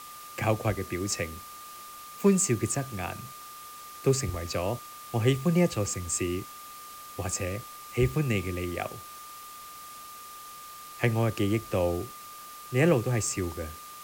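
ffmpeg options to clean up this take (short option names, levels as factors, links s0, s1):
-af "adeclick=t=4,bandreject=f=1200:w=30,afftdn=nr=28:nf=-45"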